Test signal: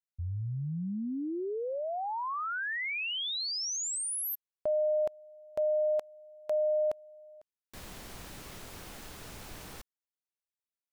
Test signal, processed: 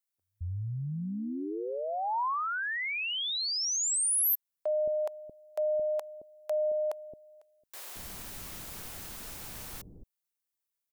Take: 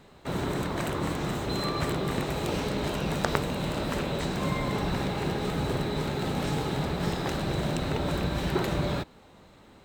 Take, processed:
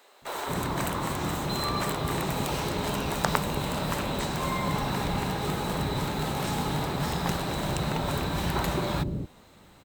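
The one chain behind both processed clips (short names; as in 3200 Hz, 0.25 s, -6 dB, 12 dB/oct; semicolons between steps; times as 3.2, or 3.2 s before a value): high shelf 8100 Hz +11 dB; bands offset in time highs, lows 0.22 s, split 410 Hz; dynamic EQ 960 Hz, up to +5 dB, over -48 dBFS, Q 2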